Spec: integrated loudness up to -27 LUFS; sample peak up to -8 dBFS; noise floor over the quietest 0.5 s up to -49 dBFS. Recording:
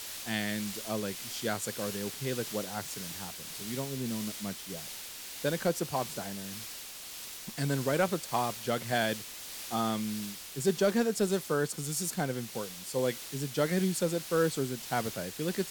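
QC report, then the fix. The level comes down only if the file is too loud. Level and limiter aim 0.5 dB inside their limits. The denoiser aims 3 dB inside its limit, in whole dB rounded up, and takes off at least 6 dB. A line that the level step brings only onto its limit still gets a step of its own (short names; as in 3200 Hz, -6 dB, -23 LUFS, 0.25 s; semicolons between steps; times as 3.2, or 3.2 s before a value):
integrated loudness -33.0 LUFS: OK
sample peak -13.5 dBFS: OK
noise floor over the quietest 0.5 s -44 dBFS: fail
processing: denoiser 8 dB, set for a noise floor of -44 dBFS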